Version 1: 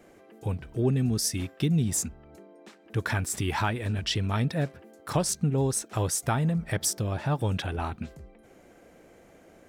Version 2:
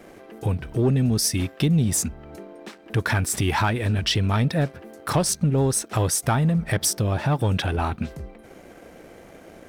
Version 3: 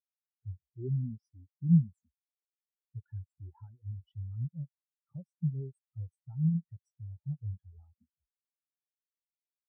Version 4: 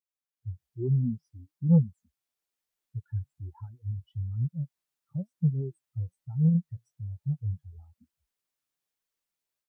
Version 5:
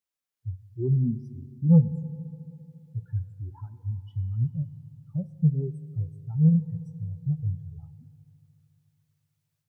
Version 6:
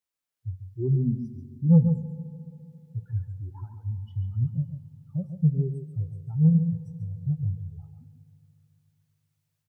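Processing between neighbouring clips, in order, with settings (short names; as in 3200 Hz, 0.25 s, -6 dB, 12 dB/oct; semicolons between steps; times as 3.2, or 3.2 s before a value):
bell 7100 Hz -5 dB 0.21 oct; in parallel at +2 dB: compressor, threshold -36 dBFS, peak gain reduction 15 dB; on the sum: sample leveller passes 1
spectral expander 4:1; gain -3.5 dB
AGC gain up to 12.5 dB; soft clip -7 dBFS, distortion -16 dB; flange 1.1 Hz, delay 1.3 ms, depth 7.6 ms, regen +64%
FDN reverb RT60 2.9 s, high-frequency decay 0.75×, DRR 13.5 dB; gain +3 dB
echo 0.14 s -8 dB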